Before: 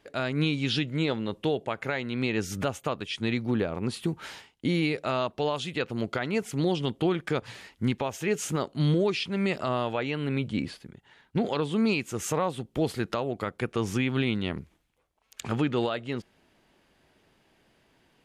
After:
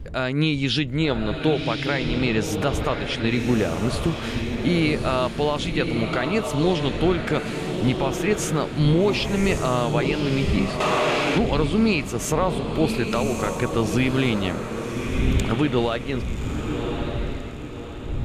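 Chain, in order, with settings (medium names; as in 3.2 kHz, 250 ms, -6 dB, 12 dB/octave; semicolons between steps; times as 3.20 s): wind noise 95 Hz -38 dBFS; echo that smears into a reverb 1154 ms, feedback 41%, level -5 dB; 10.80–11.38 s: overdrive pedal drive 19 dB, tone 7.8 kHz, clips at -16 dBFS; trim +5 dB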